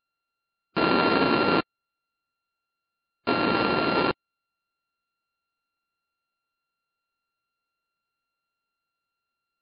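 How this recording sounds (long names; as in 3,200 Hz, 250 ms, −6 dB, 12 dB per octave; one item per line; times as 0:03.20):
a buzz of ramps at a fixed pitch in blocks of 32 samples
MP3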